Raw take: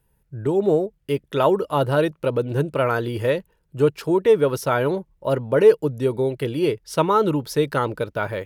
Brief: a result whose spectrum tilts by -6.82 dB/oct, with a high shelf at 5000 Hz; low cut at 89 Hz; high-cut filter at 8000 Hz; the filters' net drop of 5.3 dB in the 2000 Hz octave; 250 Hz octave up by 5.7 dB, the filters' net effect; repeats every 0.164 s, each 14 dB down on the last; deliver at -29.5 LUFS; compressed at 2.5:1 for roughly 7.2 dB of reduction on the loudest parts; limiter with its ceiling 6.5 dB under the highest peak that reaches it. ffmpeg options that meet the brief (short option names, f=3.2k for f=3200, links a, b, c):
-af "highpass=89,lowpass=8k,equalizer=f=250:t=o:g=8.5,equalizer=f=2k:t=o:g=-9,highshelf=f=5k:g=4,acompressor=threshold=-17dB:ratio=2.5,alimiter=limit=-13.5dB:level=0:latency=1,aecho=1:1:164|328:0.2|0.0399,volume=-5.5dB"